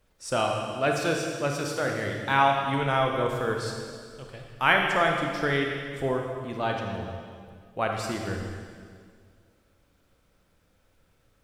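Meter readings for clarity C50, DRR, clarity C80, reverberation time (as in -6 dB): 2.0 dB, 1.0 dB, 3.5 dB, 2.0 s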